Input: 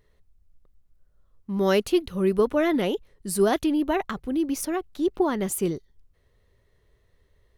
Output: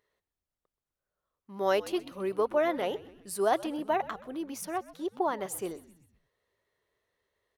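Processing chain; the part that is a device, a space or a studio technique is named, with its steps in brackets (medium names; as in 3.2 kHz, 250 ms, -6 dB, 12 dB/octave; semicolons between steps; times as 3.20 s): dynamic bell 710 Hz, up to +7 dB, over -35 dBFS, Q 0.96; filter by subtraction (in parallel: low-pass 850 Hz 12 dB/octave + polarity flip); on the sum: frequency-shifting echo 127 ms, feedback 51%, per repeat -79 Hz, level -18.5 dB; trim -8 dB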